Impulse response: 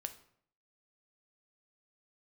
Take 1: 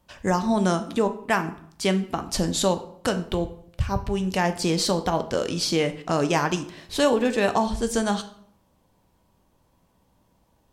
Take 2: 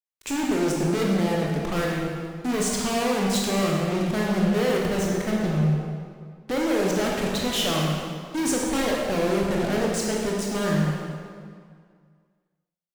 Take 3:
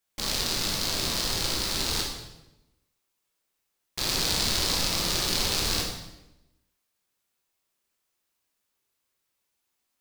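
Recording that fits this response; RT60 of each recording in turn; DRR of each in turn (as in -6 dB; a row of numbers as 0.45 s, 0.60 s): 1; 0.65 s, 2.0 s, 0.95 s; 8.0 dB, -2.5 dB, -1.0 dB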